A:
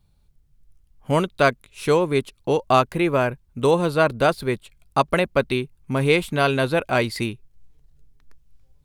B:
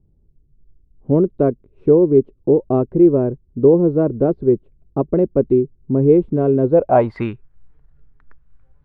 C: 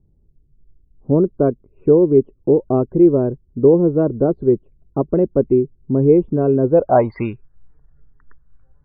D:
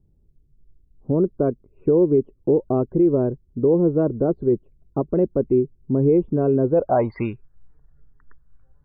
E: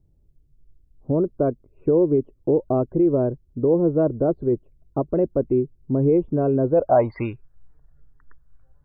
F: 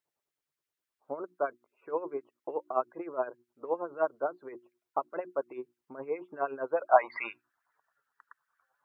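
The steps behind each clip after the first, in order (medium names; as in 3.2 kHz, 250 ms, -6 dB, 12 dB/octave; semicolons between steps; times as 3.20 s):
low-pass sweep 370 Hz -> 1.5 kHz, 6.64–7.29 s; trim +3.5 dB
loudest bins only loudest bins 64
peak limiter -7.5 dBFS, peak gain reduction 5 dB; trim -2.5 dB
graphic EQ with 31 bands 200 Hz -7 dB, 400 Hz -3 dB, 630 Hz +4 dB
hum notches 60/120/180/240/300/360 Hz; LFO high-pass sine 9.6 Hz 950–1900 Hz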